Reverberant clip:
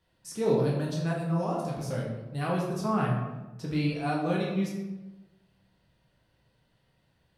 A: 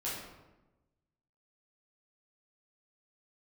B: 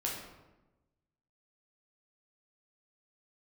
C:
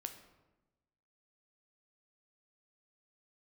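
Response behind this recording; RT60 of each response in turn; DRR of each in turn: B; 1.1, 1.1, 1.1 seconds; −8.5, −3.5, 6.5 decibels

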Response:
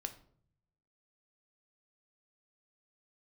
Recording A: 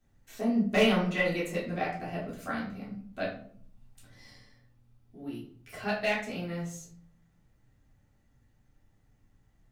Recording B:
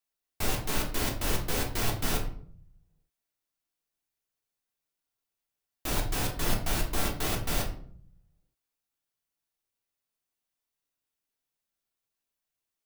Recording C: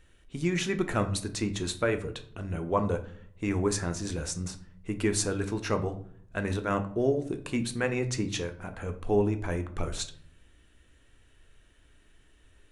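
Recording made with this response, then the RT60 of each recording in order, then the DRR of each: C; 0.55, 0.55, 0.60 seconds; −7.5, −0.5, 7.0 decibels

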